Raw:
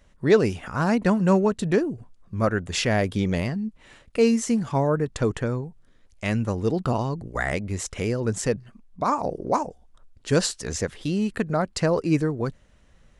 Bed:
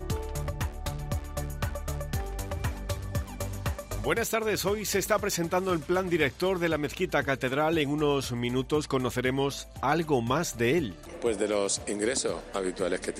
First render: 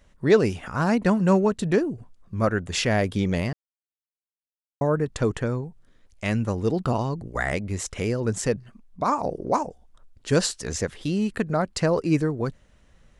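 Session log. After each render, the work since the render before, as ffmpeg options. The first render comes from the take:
-filter_complex "[0:a]asplit=3[s0][s1][s2];[s0]atrim=end=3.53,asetpts=PTS-STARTPTS,afade=t=out:st=3.526:d=0.004:c=hsin[s3];[s1]atrim=start=3.53:end=4.81,asetpts=PTS-STARTPTS,volume=0[s4];[s2]atrim=start=4.81,asetpts=PTS-STARTPTS,afade=t=in:d=0.004:c=hsin[s5];[s3][s4][s5]concat=n=3:v=0:a=1"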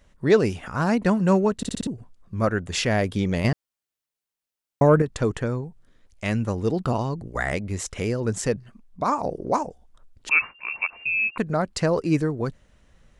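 -filter_complex "[0:a]asettb=1/sr,asplit=3[s0][s1][s2];[s0]atrim=end=3.444[s3];[s1]atrim=start=3.44:end=5.02,asetpts=PTS-STARTPTS,afade=t=in:d=0.004:c=qsin,afade=t=out:st=1.576:d=0.004:c=qsin,acontrast=86[s4];[s2]atrim=start=5.016[s5];[s3][s4]acrossfade=d=0.004:c1=hsin:c2=qsin[s6];[s6][s5]acrossfade=d=0.004:c1=qsin:c2=hsin,asettb=1/sr,asplit=3[s7][s8][s9];[s7]atrim=end=10.294[s10];[s8]atrim=start=10.29:end=11.38,asetpts=PTS-STARTPTS,afade=t=in:d=0.004:c=qsin,afade=t=out:st=1.086:d=0.004:c=qsin,lowpass=f=2400:t=q:w=0.5098,lowpass=f=2400:t=q:w=0.6013,lowpass=f=2400:t=q:w=0.9,lowpass=f=2400:t=q:w=2.563,afreqshift=-2800[s11];[s9]atrim=start=11.376[s12];[s10][s11]acrossfade=d=0.004:c1=hsin:c2=qsin[s13];[s13][s12]acrossfade=d=0.004:c1=qsin:c2=hsin,asplit=6[s14][s15][s16][s17][s18][s19];[s14]atrim=end=1.632[s20];[s15]atrim=start=1.568:end=1.632[s21];[s16]atrim=start=1.568:end=1.632[s22];[s17]atrim=start=1.568:end=1.632[s23];[s18]atrim=start=1.568:end=1.632[s24];[s19]atrim=start=1.868[s25];[s20][s21]acrossfade=d=0.004:c1=hsin:c2=hsin[s26];[s26][s22]acrossfade=d=0.004:c1=hsin:c2=hsin[s27];[s27][s23]acrossfade=d=0.004:c1=hsin:c2=hsin[s28];[s28][s24]acrossfade=d=0.004:c1=hsin:c2=hsin[s29];[s29][s25]acrossfade=d=0.004:c1=hsin:c2=hsin"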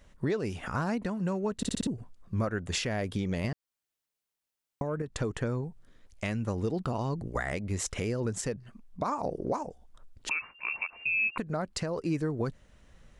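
-af "acompressor=threshold=0.0631:ratio=6,alimiter=limit=0.0944:level=0:latency=1:release=463"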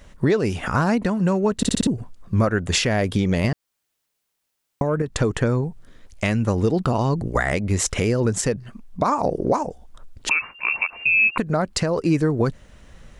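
-af "volume=3.55"

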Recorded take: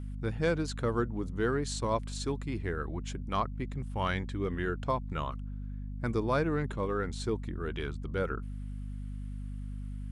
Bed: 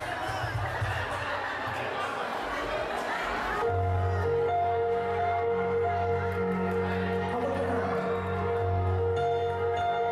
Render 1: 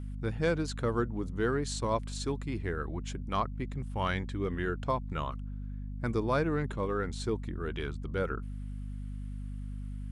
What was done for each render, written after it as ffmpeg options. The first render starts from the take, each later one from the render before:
-af anull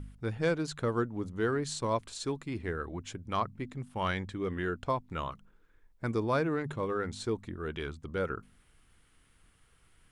-af "bandreject=f=50:t=h:w=4,bandreject=f=100:t=h:w=4,bandreject=f=150:t=h:w=4,bandreject=f=200:t=h:w=4,bandreject=f=250:t=h:w=4"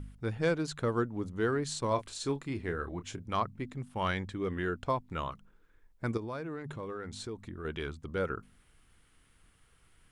-filter_complex "[0:a]asettb=1/sr,asplit=3[s0][s1][s2];[s0]atrim=end=1.884[s3];[s1]atrim=start=1.88:end=3.35,asetpts=PTS-STARTPTS,afade=t=in:d=0.004:c=qsin,afade=t=out:st=1.466:d=0.004:c=qsin,asplit=2[s4][s5];[s5]adelay=29,volume=0.316[s6];[s4][s6]amix=inputs=2:normalize=0,atrim=end_sample=64827[s7];[s2]atrim=start=3.346[s8];[s3][s7]acrossfade=d=0.004:c1=hsin:c2=qsin[s9];[s9][s8]acrossfade=d=0.004:c1=qsin:c2=hsin,asettb=1/sr,asplit=3[s10][s11][s12];[s10]atrim=end=6.174[s13];[s11]atrim=start=6.17:end=7.65,asetpts=PTS-STARTPTS,afade=t=in:d=0.004:c=qsin,afade=t=out:st=1.476:d=0.004:c=qsin,acompressor=threshold=0.0126:ratio=3:attack=3.2:release=140:knee=1:detection=peak[s14];[s12]atrim=start=7.646[s15];[s13][s14]acrossfade=d=0.004:c1=hsin:c2=qsin[s16];[s16][s15]acrossfade=d=0.004:c1=qsin:c2=hsin"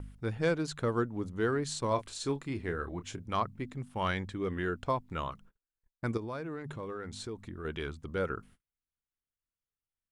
-af "agate=range=0.0178:threshold=0.00178:ratio=16:detection=peak"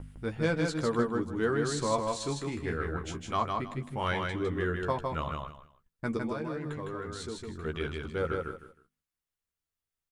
-filter_complex "[0:a]asplit=2[s0][s1];[s1]adelay=13,volume=0.501[s2];[s0][s2]amix=inputs=2:normalize=0,aecho=1:1:157|314|471:0.668|0.154|0.0354"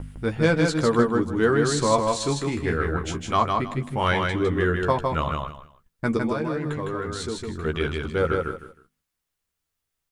-af "volume=2.66"

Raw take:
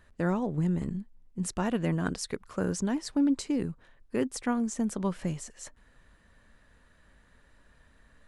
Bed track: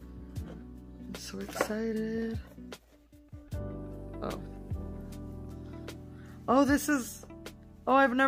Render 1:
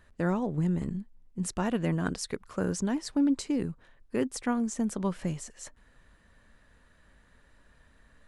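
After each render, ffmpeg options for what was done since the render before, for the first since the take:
-af anull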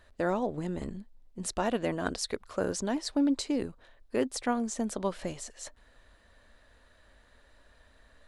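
-af "equalizer=f=160:t=o:w=0.67:g=-11,equalizer=f=630:t=o:w=0.67:g=6,equalizer=f=4000:t=o:w=0.67:g=6"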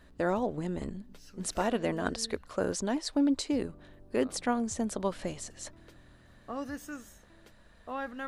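-filter_complex "[1:a]volume=0.211[s0];[0:a][s0]amix=inputs=2:normalize=0"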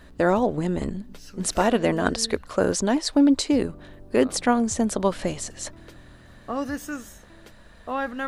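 -af "volume=2.82"

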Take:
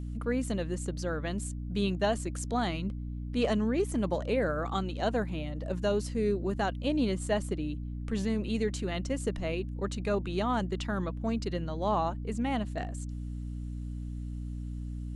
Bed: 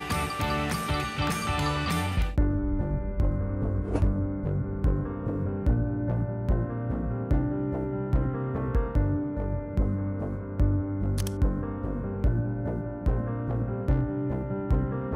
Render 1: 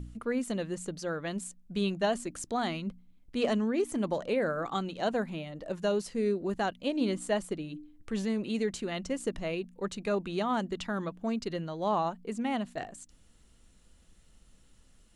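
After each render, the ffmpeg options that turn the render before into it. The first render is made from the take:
-af "bandreject=f=60:t=h:w=4,bandreject=f=120:t=h:w=4,bandreject=f=180:t=h:w=4,bandreject=f=240:t=h:w=4,bandreject=f=300:t=h:w=4"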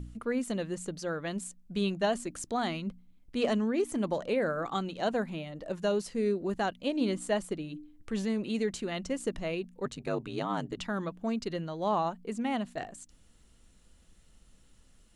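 -filter_complex "[0:a]asettb=1/sr,asplit=3[s0][s1][s2];[s0]atrim=end=9.854[s3];[s1]atrim=start=9.85:end=10.79,asetpts=PTS-STARTPTS,afade=t=in:d=0.004:c=qsin,afade=t=out:st=0.936:d=0.004:c=qsin,aeval=exprs='val(0)*sin(2*PI*52*n/s)':c=same[s4];[s2]atrim=start=10.786[s5];[s3][s4]acrossfade=d=0.004:c1=hsin:c2=qsin[s6];[s6][s5]acrossfade=d=0.004:c1=qsin:c2=hsin"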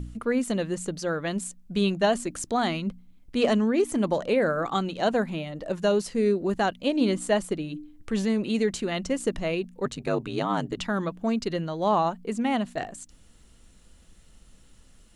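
-af "volume=2"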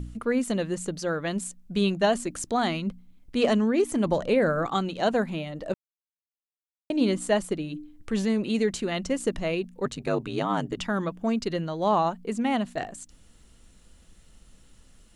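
-filter_complex "[0:a]asettb=1/sr,asplit=3[s0][s1][s2];[s0]atrim=end=4.064[s3];[s1]atrim=start=4.06:end=4.67,asetpts=PTS-STARTPTS,afade=t=in:d=0.004:c=qsin,afade=t=out:st=0.606:d=0.004:c=qsin,lowshelf=f=120:g=10.5[s4];[s2]atrim=start=4.666[s5];[s3][s4]acrossfade=d=0.004:c1=hsin:c2=qsin[s6];[s6][s5]acrossfade=d=0.004:c1=qsin:c2=hsin,asettb=1/sr,asplit=3[s7][s8][s9];[s7]atrim=end=10.374[s10];[s8]atrim=start=10.37:end=11.38,asetpts=PTS-STARTPTS,afade=t=in:d=0.004:c=qsin,afade=t=out:st=1.006:d=0.004:c=qsin,bandreject=f=4100:w=12[s11];[s9]atrim=start=11.376[s12];[s10][s11]acrossfade=d=0.004:c1=hsin:c2=qsin[s13];[s13][s12]acrossfade=d=0.004:c1=qsin:c2=hsin,asplit=3[s14][s15][s16];[s14]atrim=end=5.74,asetpts=PTS-STARTPTS,afade=t=out:st=5.736:d=0.004:c=hsin[s17];[s15]atrim=start=5.74:end=6.9,asetpts=PTS-STARTPTS,volume=0[s18];[s16]atrim=start=6.9,asetpts=PTS-STARTPTS,afade=t=in:d=0.004:c=hsin[s19];[s17][s18][s19]concat=n=3:v=0:a=1"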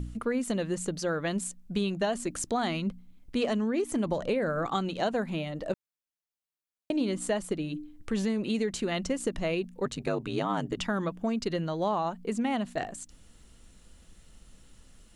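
-af "acompressor=threshold=0.0562:ratio=6"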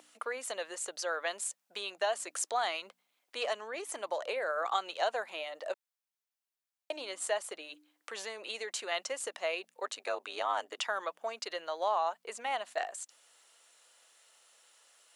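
-af "highpass=f=590:w=0.5412,highpass=f=590:w=1.3066"

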